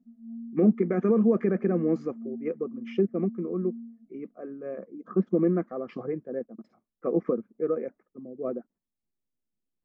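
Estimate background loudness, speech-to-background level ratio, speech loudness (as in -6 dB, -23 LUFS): -42.5 LUFS, 14.5 dB, -28.0 LUFS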